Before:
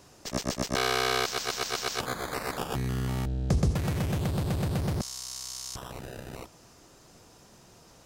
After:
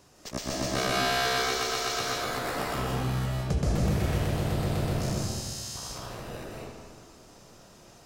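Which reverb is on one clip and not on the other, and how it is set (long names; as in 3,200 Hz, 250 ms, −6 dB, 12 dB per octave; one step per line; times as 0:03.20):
comb and all-pass reverb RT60 1.7 s, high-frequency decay 0.75×, pre-delay 120 ms, DRR −5 dB
level −3.5 dB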